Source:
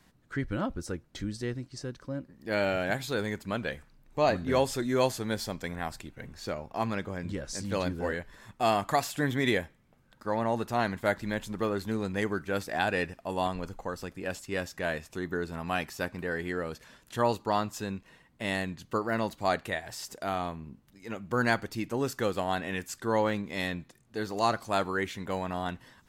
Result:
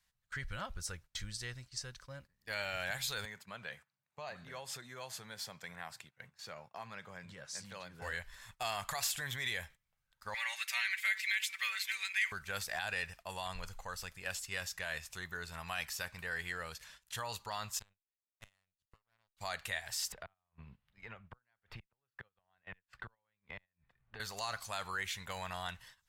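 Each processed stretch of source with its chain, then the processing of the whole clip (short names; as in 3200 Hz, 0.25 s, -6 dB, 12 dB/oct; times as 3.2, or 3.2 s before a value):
3.25–8.02 high shelf 2700 Hz -10.5 dB + compressor 5:1, threshold -32 dBFS + HPF 130 Hz 24 dB/oct
10.34–12.32 resonant high-pass 2200 Hz, resonance Q 5.1 + comb 5.2 ms, depth 97%
17.79–19.37 low shelf 150 Hz +10.5 dB + power-law curve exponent 2 + flipped gate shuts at -31 dBFS, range -25 dB
20.12–24.2 flipped gate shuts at -23 dBFS, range -36 dB + air absorption 490 m + three-band squash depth 100%
whole clip: limiter -22.5 dBFS; passive tone stack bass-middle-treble 10-0-10; gate -59 dBFS, range -14 dB; gain +4 dB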